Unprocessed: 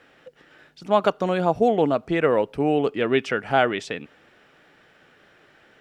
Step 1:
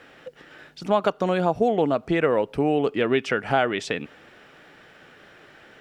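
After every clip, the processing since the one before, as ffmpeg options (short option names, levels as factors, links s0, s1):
-af "acompressor=threshold=0.0398:ratio=2,volume=1.88"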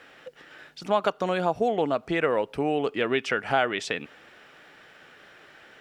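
-af "lowshelf=f=490:g=-7"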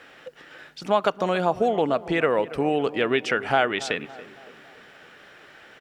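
-filter_complex "[0:a]asplit=2[s0][s1];[s1]adelay=281,lowpass=f=1600:p=1,volume=0.158,asplit=2[s2][s3];[s3]adelay=281,lowpass=f=1600:p=1,volume=0.53,asplit=2[s4][s5];[s5]adelay=281,lowpass=f=1600:p=1,volume=0.53,asplit=2[s6][s7];[s7]adelay=281,lowpass=f=1600:p=1,volume=0.53,asplit=2[s8][s9];[s9]adelay=281,lowpass=f=1600:p=1,volume=0.53[s10];[s0][s2][s4][s6][s8][s10]amix=inputs=6:normalize=0,volume=1.33"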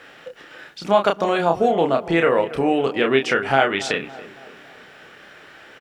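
-filter_complex "[0:a]asplit=2[s0][s1];[s1]adelay=30,volume=0.562[s2];[s0][s2]amix=inputs=2:normalize=0,volume=1.41"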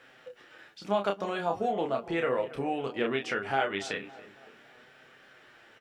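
-af "flanger=delay=7.7:depth=2.5:regen=47:speed=0.39:shape=sinusoidal,volume=0.422"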